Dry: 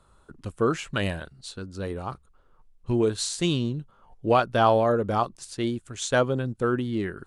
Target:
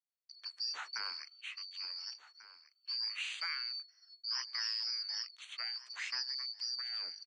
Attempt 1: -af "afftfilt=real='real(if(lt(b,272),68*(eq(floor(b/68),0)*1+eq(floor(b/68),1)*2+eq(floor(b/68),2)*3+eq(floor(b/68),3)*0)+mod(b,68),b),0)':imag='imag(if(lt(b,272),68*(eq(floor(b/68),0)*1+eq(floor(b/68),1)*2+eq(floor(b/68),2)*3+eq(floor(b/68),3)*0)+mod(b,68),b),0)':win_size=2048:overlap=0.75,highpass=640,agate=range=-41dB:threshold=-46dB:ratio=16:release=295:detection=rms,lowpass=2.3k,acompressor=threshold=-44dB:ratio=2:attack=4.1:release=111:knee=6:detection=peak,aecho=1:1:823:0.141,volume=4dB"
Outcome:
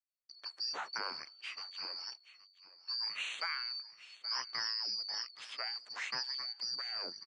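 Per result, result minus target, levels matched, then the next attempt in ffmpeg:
500 Hz band +13.5 dB; echo 0.62 s early
-af "afftfilt=real='real(if(lt(b,272),68*(eq(floor(b/68),0)*1+eq(floor(b/68),1)*2+eq(floor(b/68),2)*3+eq(floor(b/68),3)*0)+mod(b,68),b),0)':imag='imag(if(lt(b,272),68*(eq(floor(b/68),0)*1+eq(floor(b/68),1)*2+eq(floor(b/68),2)*3+eq(floor(b/68),3)*0)+mod(b,68),b),0)':win_size=2048:overlap=0.75,highpass=1.7k,agate=range=-41dB:threshold=-46dB:ratio=16:release=295:detection=rms,lowpass=2.3k,acompressor=threshold=-44dB:ratio=2:attack=4.1:release=111:knee=6:detection=peak,aecho=1:1:823:0.141,volume=4dB"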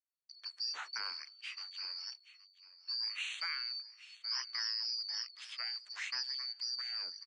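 echo 0.62 s early
-af "afftfilt=real='real(if(lt(b,272),68*(eq(floor(b/68),0)*1+eq(floor(b/68),1)*2+eq(floor(b/68),2)*3+eq(floor(b/68),3)*0)+mod(b,68),b),0)':imag='imag(if(lt(b,272),68*(eq(floor(b/68),0)*1+eq(floor(b/68),1)*2+eq(floor(b/68),2)*3+eq(floor(b/68),3)*0)+mod(b,68),b),0)':win_size=2048:overlap=0.75,highpass=1.7k,agate=range=-41dB:threshold=-46dB:ratio=16:release=295:detection=rms,lowpass=2.3k,acompressor=threshold=-44dB:ratio=2:attack=4.1:release=111:knee=6:detection=peak,aecho=1:1:1443:0.141,volume=4dB"

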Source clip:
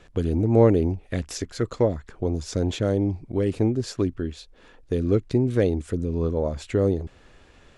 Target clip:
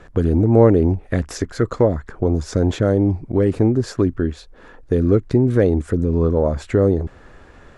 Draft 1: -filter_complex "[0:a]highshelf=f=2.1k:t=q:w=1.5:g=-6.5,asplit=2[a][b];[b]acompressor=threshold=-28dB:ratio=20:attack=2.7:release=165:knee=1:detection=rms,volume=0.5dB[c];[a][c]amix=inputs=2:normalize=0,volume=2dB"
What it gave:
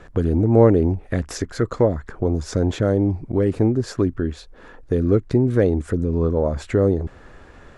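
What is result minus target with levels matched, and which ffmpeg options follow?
compressor: peak gain reduction +7.5 dB
-filter_complex "[0:a]highshelf=f=2.1k:t=q:w=1.5:g=-6.5,asplit=2[a][b];[b]acompressor=threshold=-20dB:ratio=20:attack=2.7:release=165:knee=1:detection=rms,volume=0.5dB[c];[a][c]amix=inputs=2:normalize=0,volume=2dB"

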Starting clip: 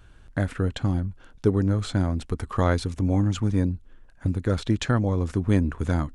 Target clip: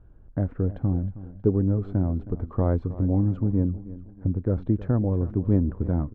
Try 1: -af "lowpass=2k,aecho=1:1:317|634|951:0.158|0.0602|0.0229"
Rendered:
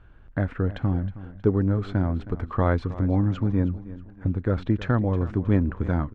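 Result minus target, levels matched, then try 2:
2000 Hz band +14.5 dB
-af "lowpass=620,aecho=1:1:317|634|951:0.158|0.0602|0.0229"

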